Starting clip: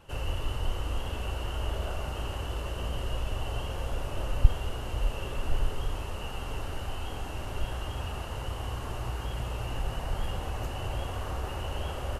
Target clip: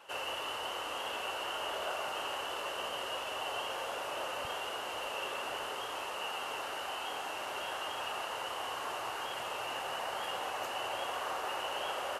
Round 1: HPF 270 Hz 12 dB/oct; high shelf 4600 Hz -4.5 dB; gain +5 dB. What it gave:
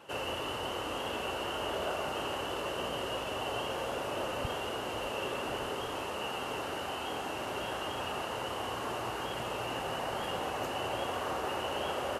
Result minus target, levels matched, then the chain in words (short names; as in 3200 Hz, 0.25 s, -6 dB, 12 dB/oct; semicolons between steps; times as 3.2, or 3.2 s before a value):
250 Hz band +10.0 dB
HPF 660 Hz 12 dB/oct; high shelf 4600 Hz -4.5 dB; gain +5 dB